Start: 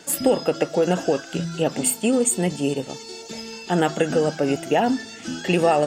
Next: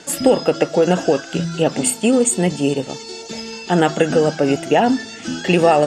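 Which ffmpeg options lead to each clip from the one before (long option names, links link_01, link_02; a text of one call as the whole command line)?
ffmpeg -i in.wav -af "lowpass=8900,volume=5dB" out.wav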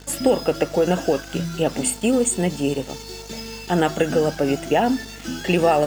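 ffmpeg -i in.wav -filter_complex "[0:a]aeval=exprs='val(0)+0.0141*(sin(2*PI*50*n/s)+sin(2*PI*2*50*n/s)/2+sin(2*PI*3*50*n/s)/3+sin(2*PI*4*50*n/s)/4+sin(2*PI*5*50*n/s)/5)':channel_layout=same,asplit=2[link_01][link_02];[link_02]acrusher=bits=4:mix=0:aa=0.000001,volume=-3.5dB[link_03];[link_01][link_03]amix=inputs=2:normalize=0,volume=-8.5dB" out.wav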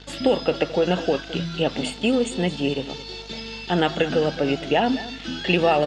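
ffmpeg -i in.wav -af "lowpass=frequency=3700:width_type=q:width=2.6,aecho=1:1:215:0.15,volume=-2dB" out.wav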